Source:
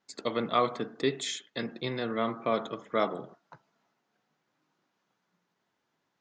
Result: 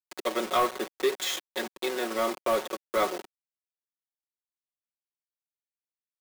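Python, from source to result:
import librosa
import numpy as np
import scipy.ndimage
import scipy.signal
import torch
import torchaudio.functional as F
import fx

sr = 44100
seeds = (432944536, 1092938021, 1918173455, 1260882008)

y = fx.delta_hold(x, sr, step_db=-33.0)
y = scipy.signal.sosfilt(scipy.signal.butter(4, 310.0, 'highpass', fs=sr, output='sos'), y)
y = y + 0.76 * np.pad(y, (int(5.4 * sr / 1000.0), 0))[:len(y)]
y = fx.leveller(y, sr, passes=2)
y = y * librosa.db_to_amplitude(-4.5)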